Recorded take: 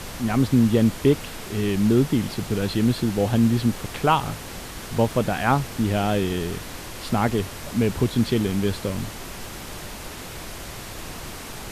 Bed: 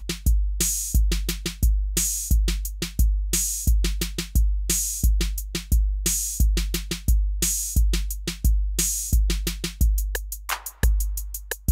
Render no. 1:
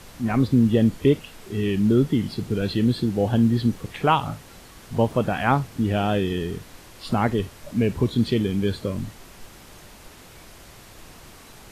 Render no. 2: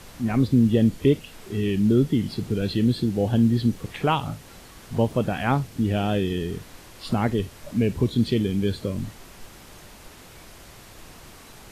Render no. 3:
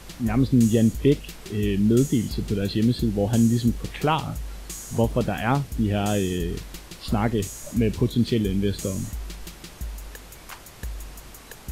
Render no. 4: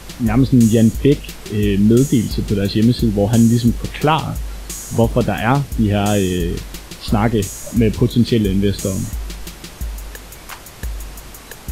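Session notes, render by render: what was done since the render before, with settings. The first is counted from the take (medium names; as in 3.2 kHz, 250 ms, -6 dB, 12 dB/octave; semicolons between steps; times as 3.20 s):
noise print and reduce 10 dB
dynamic bell 1.1 kHz, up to -5 dB, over -37 dBFS, Q 0.79
add bed -13.5 dB
trim +7.5 dB; peak limiter -3 dBFS, peak gain reduction 2.5 dB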